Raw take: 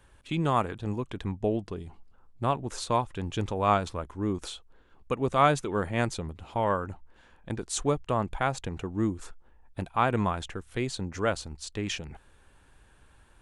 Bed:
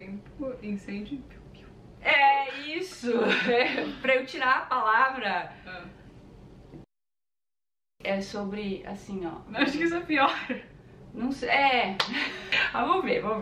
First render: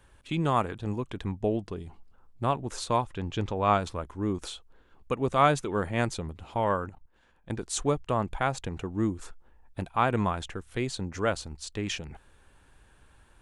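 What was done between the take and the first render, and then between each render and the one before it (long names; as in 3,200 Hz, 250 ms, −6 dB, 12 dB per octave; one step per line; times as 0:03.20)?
0:03.14–0:03.74: low-pass filter 5,900 Hz
0:06.89–0:07.49: output level in coarse steps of 16 dB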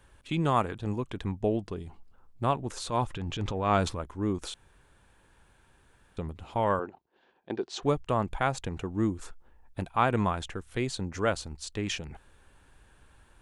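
0:02.68–0:04.00: transient designer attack −8 dB, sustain +6 dB
0:04.54–0:06.17: fill with room tone
0:06.79–0:07.83: loudspeaker in its box 240–4,900 Hz, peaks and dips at 380 Hz +9 dB, 750 Hz +5 dB, 1,300 Hz −4 dB, 2,100 Hz −3 dB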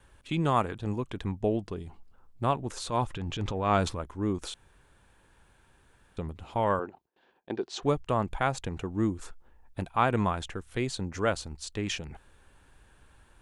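noise gate with hold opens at −58 dBFS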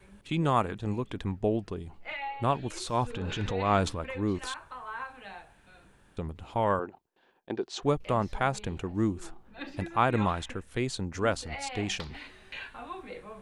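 mix in bed −16.5 dB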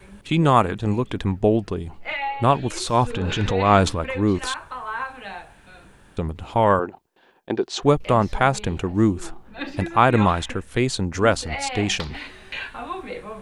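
level +9.5 dB
brickwall limiter −3 dBFS, peak gain reduction 1 dB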